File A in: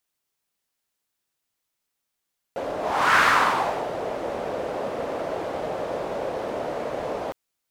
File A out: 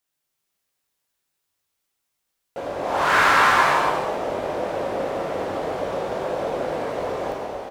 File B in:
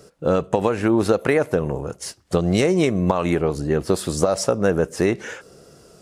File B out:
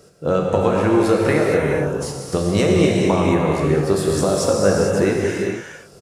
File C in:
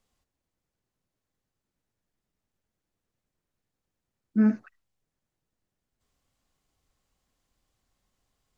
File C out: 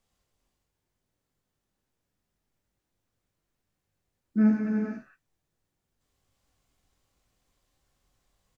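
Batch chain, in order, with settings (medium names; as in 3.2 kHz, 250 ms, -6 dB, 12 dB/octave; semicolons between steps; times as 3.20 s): doubling 20 ms -10.5 dB; gated-style reverb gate 490 ms flat, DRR -2 dB; trim -1.5 dB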